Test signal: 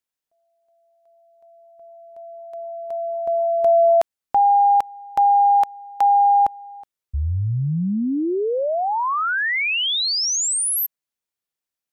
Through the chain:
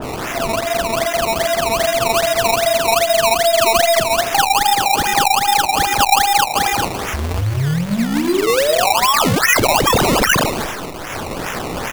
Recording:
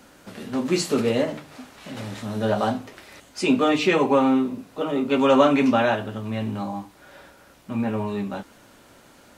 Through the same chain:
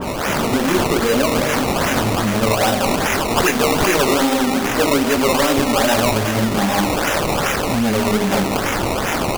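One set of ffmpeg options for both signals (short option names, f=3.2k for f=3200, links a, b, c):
-af "aeval=exprs='val(0)+0.5*0.0501*sgn(val(0))':c=same,aecho=1:1:196|392|588:0.422|0.118|0.0331,dynaudnorm=f=160:g=3:m=4dB,aexciter=amount=2.7:drive=2.6:freq=2.3k,aeval=exprs='1.12*(cos(1*acos(clip(val(0)/1.12,-1,1)))-cos(1*PI/2))+0.447*(cos(5*acos(clip(val(0)/1.12,-1,1)))-cos(5*PI/2))+0.0501*(cos(6*acos(clip(val(0)/1.12,-1,1)))-cos(6*PI/2))':c=same,flanger=delay=16.5:depth=5.5:speed=2.3,acompressor=threshold=-13dB:ratio=6:attack=28:release=158:knee=1:detection=rms,flanger=delay=1.6:depth=7.8:regen=-73:speed=0.27:shape=sinusoidal,aresample=16000,aresample=44100,lowshelf=f=200:g=-5.5,acrusher=samples=19:mix=1:aa=0.000001:lfo=1:lforange=19:lforate=2.5,adynamicequalizer=threshold=0.0631:dfrequency=2400:dqfactor=0.7:tfrequency=2400:tqfactor=0.7:attack=5:release=100:ratio=0.375:range=1.5:mode=boostabove:tftype=highshelf,volume=4.5dB"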